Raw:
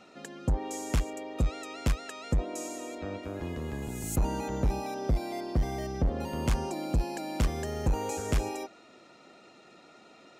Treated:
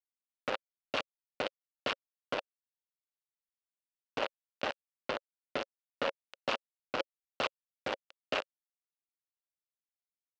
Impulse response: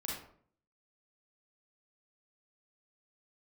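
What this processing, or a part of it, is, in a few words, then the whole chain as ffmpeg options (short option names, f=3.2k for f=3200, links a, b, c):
hand-held game console: -af "acrusher=bits=3:mix=0:aa=0.000001,highpass=450,equalizer=f=550:t=q:w=4:g=9,equalizer=f=1.4k:t=q:w=4:g=4,equalizer=f=2.8k:t=q:w=4:g=7,lowpass=f=4.5k:w=0.5412,lowpass=f=4.5k:w=1.3066,volume=-5dB"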